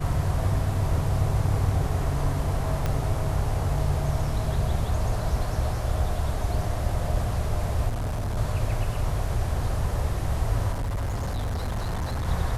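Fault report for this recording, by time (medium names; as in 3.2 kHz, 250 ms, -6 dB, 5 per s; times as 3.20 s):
2.86 s: pop -14 dBFS
7.88–8.38 s: clipped -25 dBFS
10.71–12.27 s: clipped -25 dBFS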